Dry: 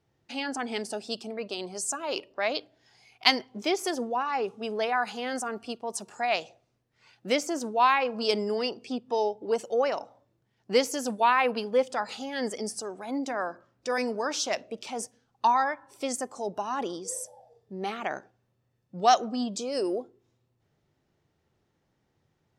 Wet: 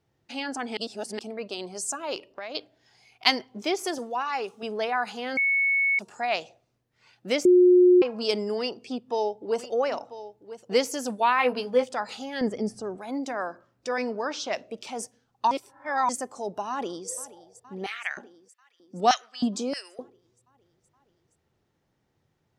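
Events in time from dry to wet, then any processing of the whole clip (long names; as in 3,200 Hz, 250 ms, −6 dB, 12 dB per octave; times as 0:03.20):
0:00.77–0:01.19: reverse
0:02.15–0:02.55: downward compressor, threshold −33 dBFS
0:03.98–0:04.63: spectral tilt +2.5 dB per octave
0:05.37–0:05.99: beep over 2,210 Hz −20 dBFS
0:07.45–0:08.02: beep over 360 Hz −12.5 dBFS
0:08.58–0:10.78: single-tap delay 992 ms −14 dB
0:11.37–0:11.89: double-tracking delay 16 ms −4.5 dB
0:12.41–0:12.98: RIAA equalisation playback
0:13.89–0:14.55: low-pass filter 4,400 Hz
0:15.51–0:16.09: reverse
0:16.70–0:17.12: delay throw 470 ms, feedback 75%, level −18 dB
0:17.86–0:19.99: auto-filter high-pass square 1.6 Hz 240–1,900 Hz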